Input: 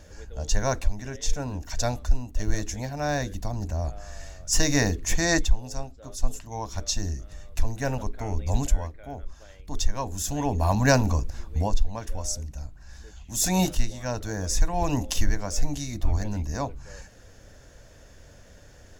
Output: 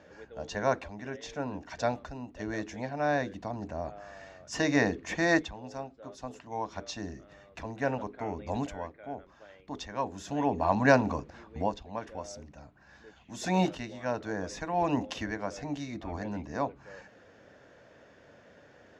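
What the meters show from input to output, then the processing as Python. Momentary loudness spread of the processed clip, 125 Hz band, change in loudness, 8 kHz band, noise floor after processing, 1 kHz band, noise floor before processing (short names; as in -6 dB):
18 LU, -10.5 dB, -4.0 dB, -17.0 dB, -58 dBFS, 0.0 dB, -50 dBFS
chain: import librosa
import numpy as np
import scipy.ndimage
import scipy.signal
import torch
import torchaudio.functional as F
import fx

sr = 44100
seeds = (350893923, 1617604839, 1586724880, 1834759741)

y = fx.bandpass_edges(x, sr, low_hz=210.0, high_hz=2600.0)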